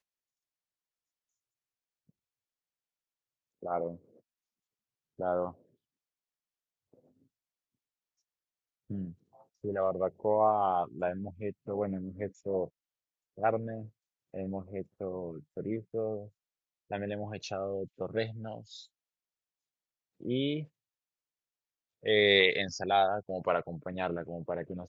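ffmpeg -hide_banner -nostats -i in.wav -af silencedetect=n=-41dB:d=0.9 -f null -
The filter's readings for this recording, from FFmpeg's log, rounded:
silence_start: 0.00
silence_end: 3.63 | silence_duration: 3.63
silence_start: 3.96
silence_end: 5.19 | silence_duration: 1.24
silence_start: 5.50
silence_end: 8.90 | silence_duration: 3.40
silence_start: 18.83
silence_end: 20.22 | silence_duration: 1.40
silence_start: 20.64
silence_end: 22.05 | silence_duration: 1.41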